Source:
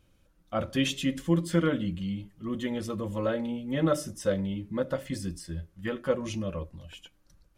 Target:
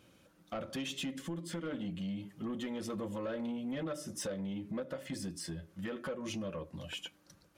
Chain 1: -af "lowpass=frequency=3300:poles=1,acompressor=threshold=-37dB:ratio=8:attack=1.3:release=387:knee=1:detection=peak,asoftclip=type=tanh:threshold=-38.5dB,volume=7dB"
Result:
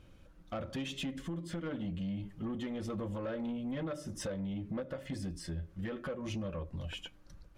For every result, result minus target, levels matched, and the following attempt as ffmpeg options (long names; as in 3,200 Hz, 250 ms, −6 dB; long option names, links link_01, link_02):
8,000 Hz band −5.5 dB; 125 Hz band +4.0 dB
-af "lowpass=frequency=11000:poles=1,acompressor=threshold=-37dB:ratio=8:attack=1.3:release=387:knee=1:detection=peak,asoftclip=type=tanh:threshold=-38.5dB,volume=7dB"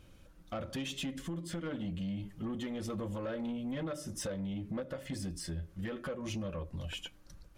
125 Hz band +3.5 dB
-af "lowpass=frequency=11000:poles=1,acompressor=threshold=-37dB:ratio=8:attack=1.3:release=387:knee=1:detection=peak,highpass=160,asoftclip=type=tanh:threshold=-38.5dB,volume=7dB"